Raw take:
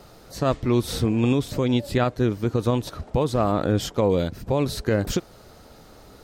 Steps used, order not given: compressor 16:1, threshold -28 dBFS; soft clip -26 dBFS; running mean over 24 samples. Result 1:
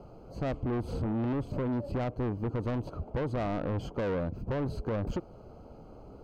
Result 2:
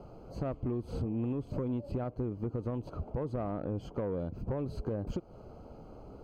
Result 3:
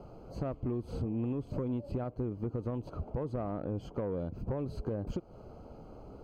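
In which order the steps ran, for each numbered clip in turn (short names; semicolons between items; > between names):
running mean > soft clip > compressor; running mean > compressor > soft clip; compressor > running mean > soft clip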